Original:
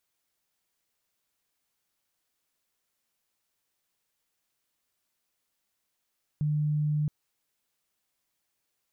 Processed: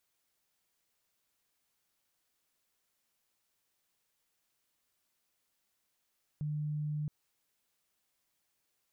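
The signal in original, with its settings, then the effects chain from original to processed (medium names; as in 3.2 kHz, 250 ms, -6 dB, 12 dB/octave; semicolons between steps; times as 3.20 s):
tone sine 150 Hz -24 dBFS 0.67 s
peak limiter -32.5 dBFS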